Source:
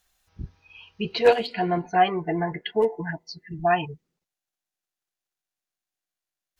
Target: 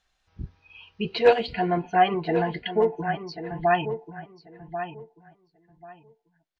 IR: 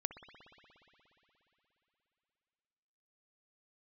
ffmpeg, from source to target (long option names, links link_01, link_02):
-filter_complex "[0:a]lowpass=4600,asplit=2[link_01][link_02];[link_02]adelay=1089,lowpass=frequency=2800:poles=1,volume=-10dB,asplit=2[link_03][link_04];[link_04]adelay=1089,lowpass=frequency=2800:poles=1,volume=0.21,asplit=2[link_05][link_06];[link_06]adelay=1089,lowpass=frequency=2800:poles=1,volume=0.21[link_07];[link_03][link_05][link_07]amix=inputs=3:normalize=0[link_08];[link_01][link_08]amix=inputs=2:normalize=0"